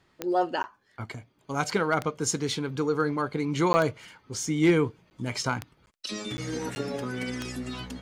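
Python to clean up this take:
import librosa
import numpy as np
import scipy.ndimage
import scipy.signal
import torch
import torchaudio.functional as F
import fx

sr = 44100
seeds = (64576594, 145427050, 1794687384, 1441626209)

y = fx.fix_declip(x, sr, threshold_db=-13.0)
y = fx.fix_declick_ar(y, sr, threshold=10.0)
y = fx.fix_interpolate(y, sr, at_s=(0.63, 3.73, 5.1, 5.86, 6.37, 6.75), length_ms=10.0)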